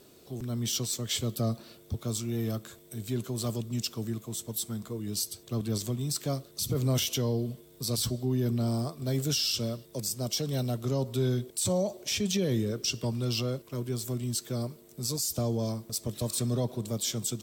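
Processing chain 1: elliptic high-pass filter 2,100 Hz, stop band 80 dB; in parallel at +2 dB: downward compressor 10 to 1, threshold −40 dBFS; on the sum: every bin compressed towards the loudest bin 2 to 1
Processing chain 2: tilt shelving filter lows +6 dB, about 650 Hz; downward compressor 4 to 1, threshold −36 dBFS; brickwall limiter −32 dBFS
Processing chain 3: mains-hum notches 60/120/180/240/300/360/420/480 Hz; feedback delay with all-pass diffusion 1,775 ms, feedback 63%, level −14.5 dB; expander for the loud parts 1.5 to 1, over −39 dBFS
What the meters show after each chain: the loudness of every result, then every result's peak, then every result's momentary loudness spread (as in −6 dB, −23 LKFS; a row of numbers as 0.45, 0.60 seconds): −32.5, −41.0, −34.5 LKFS; −13.5, −32.0, −18.0 dBFS; 7, 4, 10 LU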